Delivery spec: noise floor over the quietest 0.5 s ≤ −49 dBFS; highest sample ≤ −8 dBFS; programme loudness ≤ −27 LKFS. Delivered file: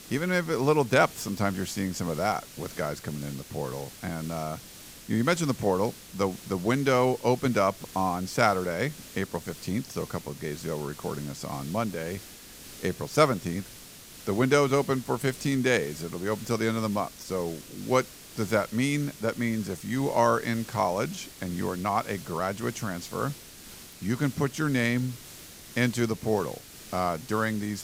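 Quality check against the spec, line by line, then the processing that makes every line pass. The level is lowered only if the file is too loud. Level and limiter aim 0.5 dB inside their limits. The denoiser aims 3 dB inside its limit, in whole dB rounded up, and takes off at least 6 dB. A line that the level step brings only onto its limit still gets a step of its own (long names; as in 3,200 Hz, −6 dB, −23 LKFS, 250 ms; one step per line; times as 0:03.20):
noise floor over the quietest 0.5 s −47 dBFS: out of spec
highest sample −7.0 dBFS: out of spec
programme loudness −28.5 LKFS: in spec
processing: broadband denoise 6 dB, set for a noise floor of −47 dBFS
brickwall limiter −8.5 dBFS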